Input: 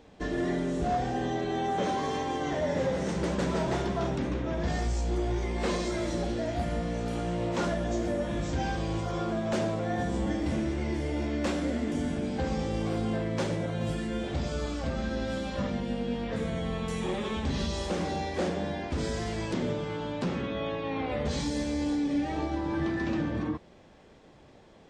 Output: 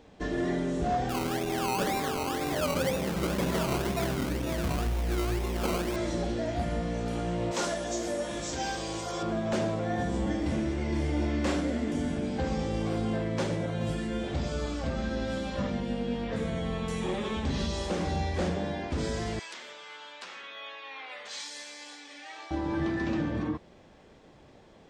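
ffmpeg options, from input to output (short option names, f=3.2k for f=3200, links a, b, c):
-filter_complex "[0:a]asettb=1/sr,asplit=3[a][b][c];[a]atrim=end=1.094[d];[b]atrim=start=1.09:end=5.96,asetpts=PTS-STARTPTS,afade=t=in:d=0.004:c=qsin,afade=t=out:st=4.866:d=0.004:c=qsin,acrusher=samples=20:mix=1:aa=0.000001:lfo=1:lforange=12:lforate=2[e];[c]atrim=start=5.956[f];[d][e]acrossfade=d=0.004:c1=hsin:c2=qsin[g];[g][f]acrossfade=d=0.004:c1=qsin:c2=hsin,asettb=1/sr,asplit=3[h][i][j];[h]atrim=end=7.514[k];[i]atrim=start=7.51:end=9.23,asetpts=PTS-STARTPTS,afade=t=in:d=0.004:c=qsin,afade=t=out:st=1.716:d=0.004:c=qsin,bass=f=250:g=-11,treble=f=4k:g=11[l];[j]atrim=start=9.226[m];[k][l]acrossfade=d=0.004:c1=hsin:c2=qsin[n];[n][m]acrossfade=d=0.004:c1=qsin:c2=hsin,asettb=1/sr,asplit=3[o][p][q];[o]atrim=end=10.884[r];[p]atrim=start=10.88:end=11.61,asetpts=PTS-STARTPTS,afade=t=in:d=0.004:c=qsin,afade=t=out:st=0.726:d=0.004:c=qsin,asplit=2[s][t];[t]adelay=40,volume=-4.5dB[u];[s][u]amix=inputs=2:normalize=0,atrim=end_sample=32193[v];[q]atrim=start=11.606[w];[r][v]acrossfade=d=0.004:c1=hsin:c2=qsin[x];[x][w]acrossfade=d=0.004:c1=qsin:c2=hsin,asplit=3[y][z][aa];[y]afade=t=out:st=18.05:d=0.02[ab];[z]asubboost=boost=3:cutoff=150,afade=t=in:st=18.05:d=0.02,afade=t=out:st=18.55:d=0.02[ac];[aa]afade=t=in:st=18.55:d=0.02[ad];[ab][ac][ad]amix=inputs=3:normalize=0,asettb=1/sr,asplit=3[ae][af][ag];[ae]atrim=end=19.394[ah];[af]atrim=start=19.39:end=22.51,asetpts=PTS-STARTPTS,afade=t=in:d=0.004:c=qsin,afade=t=out:st=3.116:d=0.004:c=qsin,highpass=1.4k[ai];[ag]atrim=start=22.506[aj];[ah][ai]acrossfade=d=0.004:c1=hsin:c2=qsin[ak];[ak][aj]acrossfade=d=0.004:c1=qsin:c2=hsin"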